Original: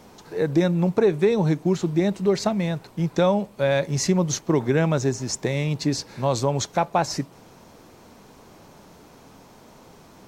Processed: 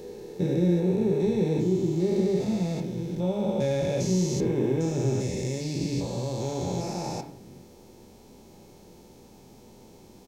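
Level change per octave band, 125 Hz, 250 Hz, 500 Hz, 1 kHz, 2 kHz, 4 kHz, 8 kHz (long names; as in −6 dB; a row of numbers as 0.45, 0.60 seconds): −3.0, −2.5, −4.5, −11.0, −12.5, −7.5, −7.5 decibels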